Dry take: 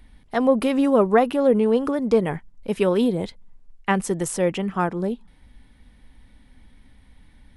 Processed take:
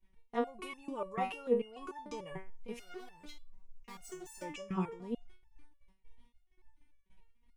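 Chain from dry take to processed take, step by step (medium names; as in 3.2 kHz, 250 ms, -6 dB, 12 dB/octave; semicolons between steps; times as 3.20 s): gate -46 dBFS, range -25 dB; rippled EQ curve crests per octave 0.74, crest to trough 8 dB; in parallel at +1 dB: compression, threshold -34 dBFS, peak gain reduction 21.5 dB; on the sum: transient shaper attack 0 dB, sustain +6 dB; 2.72–4.42 s: overload inside the chain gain 28 dB; resonator arpeggio 6.8 Hz 190–890 Hz; trim -3 dB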